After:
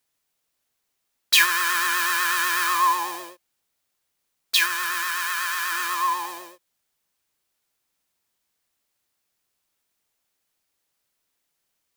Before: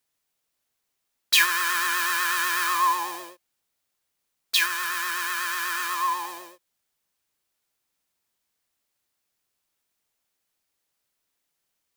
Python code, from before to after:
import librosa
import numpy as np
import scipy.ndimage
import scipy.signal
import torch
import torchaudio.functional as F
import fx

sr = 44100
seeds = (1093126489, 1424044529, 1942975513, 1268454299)

y = fx.highpass(x, sr, hz=550.0, slope=12, at=(5.03, 5.72))
y = y * librosa.db_to_amplitude(2.0)